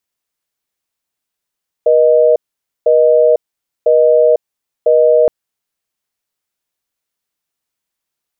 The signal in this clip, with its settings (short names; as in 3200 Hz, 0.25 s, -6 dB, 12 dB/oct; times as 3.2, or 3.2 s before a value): call progress tone busy tone, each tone -9 dBFS 3.42 s